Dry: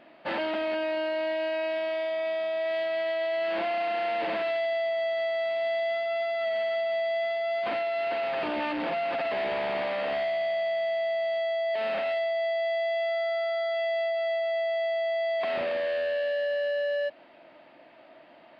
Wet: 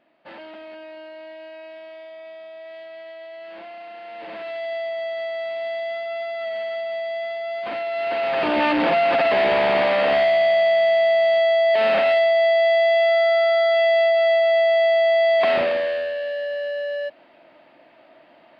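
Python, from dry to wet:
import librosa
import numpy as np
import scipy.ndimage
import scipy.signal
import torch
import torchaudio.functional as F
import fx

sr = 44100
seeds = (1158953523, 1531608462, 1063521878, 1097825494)

y = fx.gain(x, sr, db=fx.line((4.03, -10.0), (4.73, 0.5), (7.67, 0.5), (8.66, 11.0), (15.49, 11.0), (16.14, 1.5)))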